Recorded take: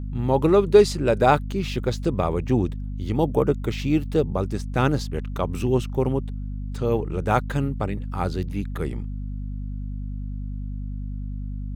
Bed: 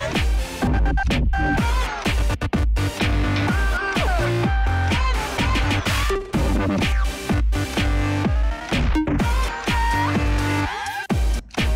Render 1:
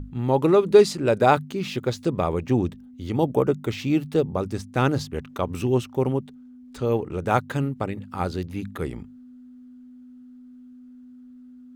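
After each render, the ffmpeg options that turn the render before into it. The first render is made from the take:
-af "bandreject=f=50:t=h:w=6,bandreject=f=100:t=h:w=6,bandreject=f=150:t=h:w=6,bandreject=f=200:t=h:w=6"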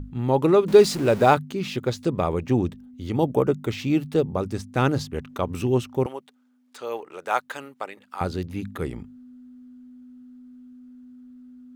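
-filter_complex "[0:a]asettb=1/sr,asplit=3[a][b][c];[a]atrim=end=0.684[d];[b]atrim=start=0.68:end=1.34,asetpts=PTS-STARTPTS,afade=t=in:d=0.004:c=qsin,afade=t=out:st=0.656:d=0.004:c=qsin,aeval=exprs='val(0)+0.5*0.0299*sgn(val(0))':c=same[e];[c]atrim=start=1.336[f];[d][e]acrossfade=d=0.004:c1=hsin:c2=qsin[g];[g][f]acrossfade=d=0.004:c1=qsin:c2=hsin,asettb=1/sr,asplit=3[h][i][j];[h]atrim=end=6.064[k];[i]atrim=start=6.06:end=8.21,asetpts=PTS-STARTPTS,afade=t=in:d=0.004:c=qsin,afade=t=out:st=2.146:d=0.004:c=qsin,highpass=680[l];[j]atrim=start=8.206[m];[k][l]acrossfade=d=0.004:c1=hsin:c2=qsin[n];[n][m]acrossfade=d=0.004:c1=qsin:c2=hsin"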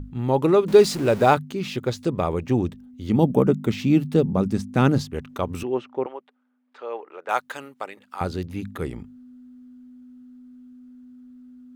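-filter_complex "[0:a]asettb=1/sr,asplit=3[a][b][c];[a]atrim=end=3.084[d];[b]atrim=start=3.08:end=5.01,asetpts=PTS-STARTPTS,afade=t=in:d=0.004:c=qsin,afade=t=out:st=1.926:d=0.004:c=qsin,equalizer=f=200:t=o:w=0.77:g=11.5[e];[c]atrim=start=5.006[f];[d][e]acrossfade=d=0.004:c1=hsin:c2=qsin[g];[g][f]acrossfade=d=0.004:c1=qsin:c2=hsin,asettb=1/sr,asplit=3[h][i][j];[h]atrim=end=5.634[k];[i]atrim=start=5.63:end=7.29,asetpts=PTS-STARTPTS,afade=t=in:d=0.004:c=qsin,afade=t=out:st=1.656:d=0.004:c=qsin,highpass=350,lowpass=2.2k[l];[j]atrim=start=7.286[m];[k][l]acrossfade=d=0.004:c1=hsin:c2=qsin[n];[n][m]acrossfade=d=0.004:c1=qsin:c2=hsin"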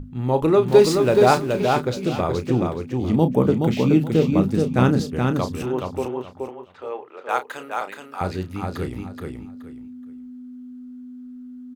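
-filter_complex "[0:a]asplit=2[a][b];[b]adelay=32,volume=-10dB[c];[a][c]amix=inputs=2:normalize=0,aecho=1:1:424|848|1272:0.631|0.145|0.0334"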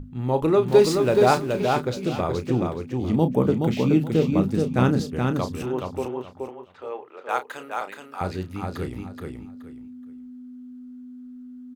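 -af "volume=-2.5dB"

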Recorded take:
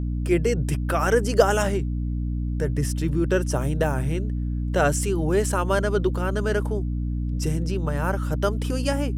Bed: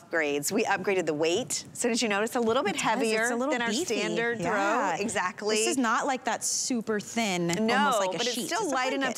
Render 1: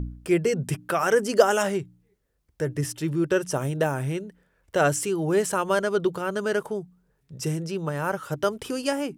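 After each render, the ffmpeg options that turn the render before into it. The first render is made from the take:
-af "bandreject=f=60:t=h:w=4,bandreject=f=120:t=h:w=4,bandreject=f=180:t=h:w=4,bandreject=f=240:t=h:w=4,bandreject=f=300:t=h:w=4"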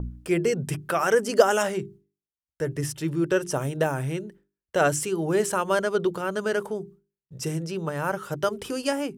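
-af "agate=range=-33dB:threshold=-43dB:ratio=3:detection=peak,bandreject=f=50:t=h:w=6,bandreject=f=100:t=h:w=6,bandreject=f=150:t=h:w=6,bandreject=f=200:t=h:w=6,bandreject=f=250:t=h:w=6,bandreject=f=300:t=h:w=6,bandreject=f=350:t=h:w=6,bandreject=f=400:t=h:w=6"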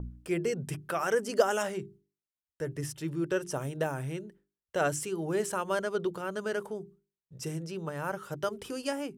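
-af "volume=-7dB"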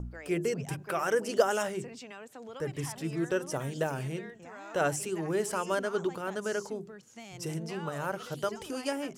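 -filter_complex "[1:a]volume=-19.5dB[a];[0:a][a]amix=inputs=2:normalize=0"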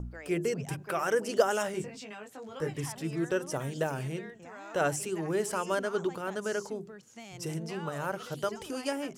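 -filter_complex "[0:a]asettb=1/sr,asplit=3[a][b][c];[a]atrim=end=1.724[d];[b]atrim=start=1.72:end=2.77,asetpts=PTS-STARTPTS,afade=t=in:d=0.004:c=qsin,afade=t=out:st=1.046:d=0.004:c=qsin,asplit=2[e][f];[f]adelay=19,volume=-3dB[g];[e][g]amix=inputs=2:normalize=0,atrim=end_sample=46305[h];[c]atrim=start=2.766[i];[d][h]acrossfade=d=0.004:c1=hsin:c2=qsin[j];[j][i]acrossfade=d=0.004:c1=qsin:c2=hsin"

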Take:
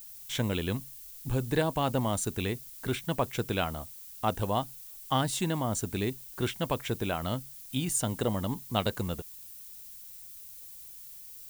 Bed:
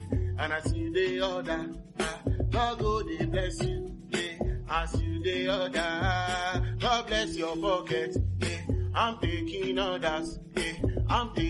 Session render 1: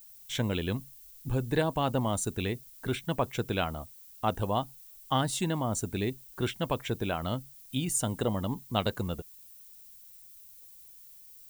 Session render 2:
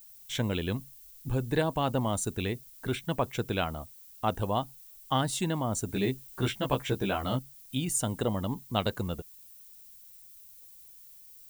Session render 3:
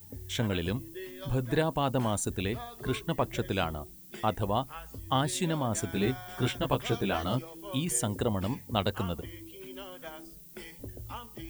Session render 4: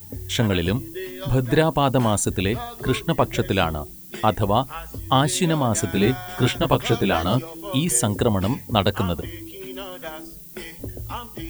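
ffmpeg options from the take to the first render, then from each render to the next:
-af "afftdn=nr=7:nf=-47"
-filter_complex "[0:a]asettb=1/sr,asplit=3[a][b][c];[a]atrim=end=5.874[d];[b]atrim=start=5.87:end=7.39,asetpts=PTS-STARTPTS,afade=t=in:d=0.004:c=qsin,afade=t=out:st=1.516:d=0.004:c=qsin,asplit=2[e][f];[f]adelay=15,volume=-2dB[g];[e][g]amix=inputs=2:normalize=0,atrim=end_sample=67032[h];[c]atrim=start=7.386[i];[d][h]acrossfade=d=0.004:c1=hsin:c2=qsin[j];[j][i]acrossfade=d=0.004:c1=qsin:c2=hsin"
-filter_complex "[1:a]volume=-15dB[a];[0:a][a]amix=inputs=2:normalize=0"
-af "volume=9.5dB"

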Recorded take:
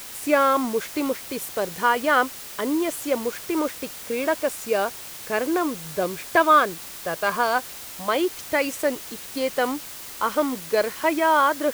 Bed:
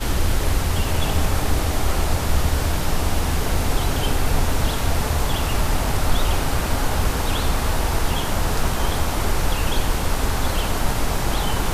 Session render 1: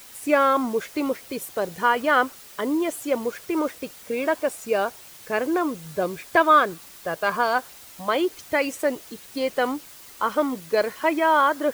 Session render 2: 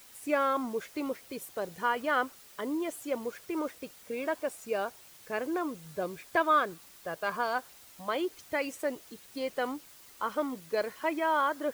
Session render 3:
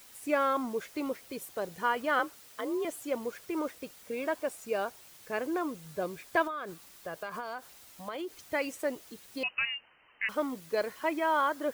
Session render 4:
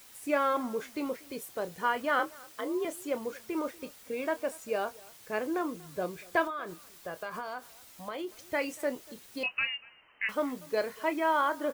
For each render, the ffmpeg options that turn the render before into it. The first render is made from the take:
-af "afftdn=nr=8:nf=-38"
-af "volume=-9dB"
-filter_complex "[0:a]asettb=1/sr,asplit=3[a][b][c];[a]atrim=end=2.194[d];[b]atrim=start=2.19:end=2.85,asetpts=PTS-STARTPTS,afade=t=in:d=0.004:c=qsin,afade=t=out:st=0.656:d=0.004:c=qsin,afreqshift=46[e];[c]atrim=start=2.846[f];[d][e]acrossfade=d=0.004:c1=hsin:c2=qsin[g];[g][f]acrossfade=d=0.004:c1=qsin:c2=hsin,asettb=1/sr,asplit=3[h][i][j];[h]atrim=end=6.474[k];[i]atrim=start=6.47:end=8.38,asetpts=PTS-STARTPTS,afade=t=in:d=0.004:c=qsin,afade=t=out:st=1.906:d=0.004:c=qsin,acompressor=threshold=-33dB:ratio=16:attack=3.2:release=140:knee=1:detection=peak[l];[j]atrim=start=8.376[m];[k][l]acrossfade=d=0.004:c1=hsin:c2=qsin[n];[n][m]acrossfade=d=0.004:c1=qsin:c2=hsin,asettb=1/sr,asplit=3[o][p][q];[o]atrim=end=9.434[r];[p]atrim=start=9.43:end=10.29,asetpts=PTS-STARTPTS,afade=t=in:d=0.004:c=qsin,afade=t=out:st=0.856:d=0.004:c=qsin,lowpass=f=2.6k:t=q:w=0.5098,lowpass=f=2.6k:t=q:w=0.6013,lowpass=f=2.6k:t=q:w=0.9,lowpass=f=2.6k:t=q:w=2.563,afreqshift=-3100[s];[q]atrim=start=10.286[t];[r][s]acrossfade=d=0.004:c1=hsin:c2=qsin[u];[u][t]acrossfade=d=0.004:c1=qsin:c2=hsin"
-filter_complex "[0:a]asplit=2[a][b];[b]adelay=28,volume=-12dB[c];[a][c]amix=inputs=2:normalize=0,asplit=2[d][e];[e]adelay=239.1,volume=-23dB,highshelf=f=4k:g=-5.38[f];[d][f]amix=inputs=2:normalize=0"

